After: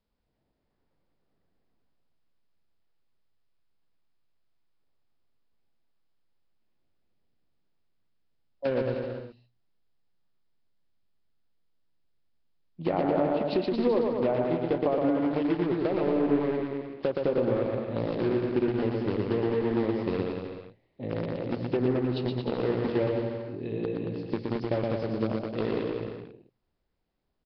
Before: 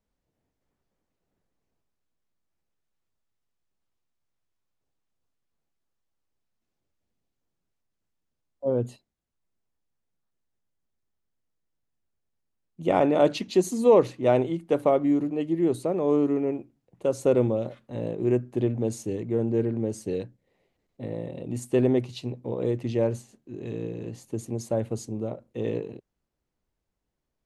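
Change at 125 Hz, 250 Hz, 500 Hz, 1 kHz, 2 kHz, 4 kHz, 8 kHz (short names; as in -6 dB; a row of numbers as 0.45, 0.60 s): -2.0 dB, -1.0 dB, -2.5 dB, -2.0 dB, +2.0 dB, -0.5 dB, under -30 dB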